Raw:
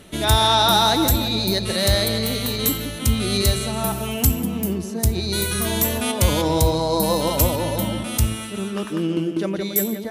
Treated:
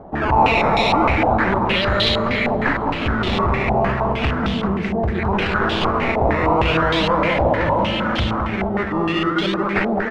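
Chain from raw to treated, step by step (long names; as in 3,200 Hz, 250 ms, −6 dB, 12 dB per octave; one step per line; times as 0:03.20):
stylus tracing distortion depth 0.098 ms
sample-and-hold swept by an LFO 16×, swing 160% 0.36 Hz
soft clipping −20.5 dBFS, distortion −8 dB
on a send: repeating echo 213 ms, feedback 58%, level −5 dB
on the sum: low-pass on a step sequencer 6.5 Hz 760–3,400 Hz
level +3.5 dB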